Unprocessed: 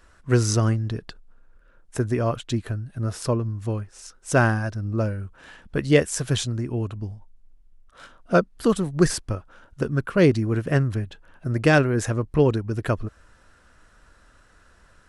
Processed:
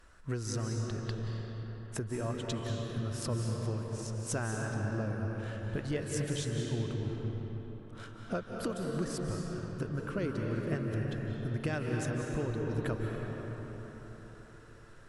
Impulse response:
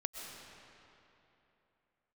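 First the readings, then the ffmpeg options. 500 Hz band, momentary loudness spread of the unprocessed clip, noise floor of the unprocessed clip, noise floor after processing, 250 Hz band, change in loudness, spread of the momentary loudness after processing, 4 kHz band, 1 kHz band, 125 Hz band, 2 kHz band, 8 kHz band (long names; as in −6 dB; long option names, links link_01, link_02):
−13.0 dB, 14 LU, −56 dBFS, −52 dBFS, −11.5 dB, −12.5 dB, 10 LU, −10.5 dB, −13.0 dB, −10.0 dB, −13.5 dB, −10.0 dB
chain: -filter_complex "[0:a]acompressor=threshold=-29dB:ratio=6[link_01];[1:a]atrim=start_sample=2205,asetrate=30870,aresample=44100[link_02];[link_01][link_02]afir=irnorm=-1:irlink=0,volume=-4dB"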